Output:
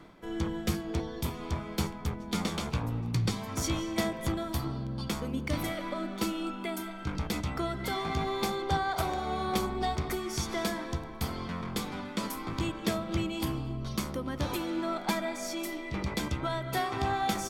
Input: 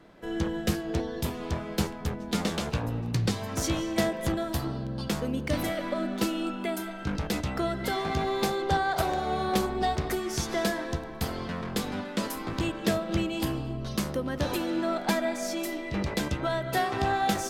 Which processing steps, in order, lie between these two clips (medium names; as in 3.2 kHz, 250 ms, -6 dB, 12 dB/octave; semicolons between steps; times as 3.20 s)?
hum notches 50/100/150/200/250 Hz; comb 0.9 ms, depth 34%; reverse; upward compressor, threshold -34 dBFS; reverse; trim -3 dB